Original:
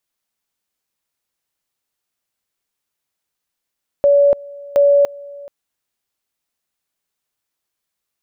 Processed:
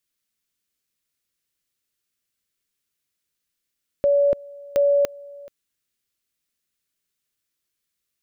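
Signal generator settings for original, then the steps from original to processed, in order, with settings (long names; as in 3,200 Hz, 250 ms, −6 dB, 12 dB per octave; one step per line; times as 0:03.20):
tone at two levels in turn 569 Hz −8 dBFS, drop 23 dB, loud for 0.29 s, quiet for 0.43 s, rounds 2
parametric band 820 Hz −13 dB 1 octave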